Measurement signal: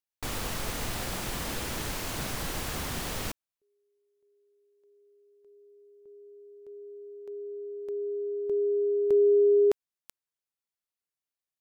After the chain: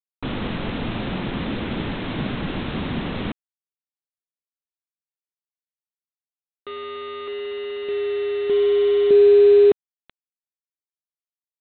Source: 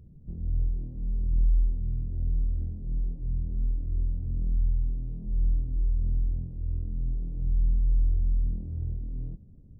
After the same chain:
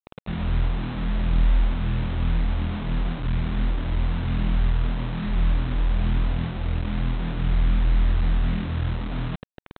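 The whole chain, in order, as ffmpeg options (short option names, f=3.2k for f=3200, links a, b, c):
-af "equalizer=f=220:t=o:w=1.9:g=13,aresample=8000,acrusher=bits=5:mix=0:aa=0.000001,aresample=44100,volume=2dB"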